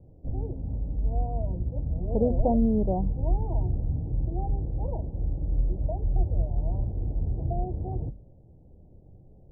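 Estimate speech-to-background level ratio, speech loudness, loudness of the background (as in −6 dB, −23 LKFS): 4.0 dB, −27.0 LKFS, −31.0 LKFS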